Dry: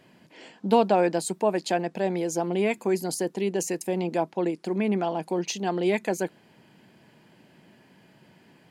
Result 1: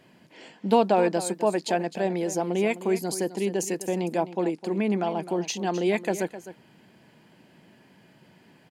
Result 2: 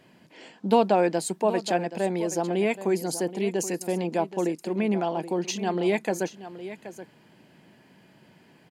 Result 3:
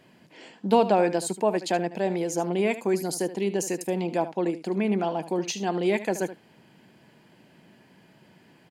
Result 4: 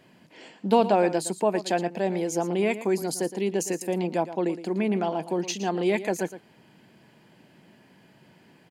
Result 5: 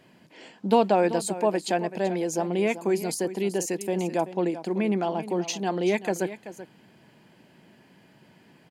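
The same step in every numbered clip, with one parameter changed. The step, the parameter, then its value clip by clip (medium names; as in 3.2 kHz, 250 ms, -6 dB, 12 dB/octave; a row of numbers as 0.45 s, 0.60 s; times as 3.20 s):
delay, time: 258 ms, 776 ms, 75 ms, 115 ms, 383 ms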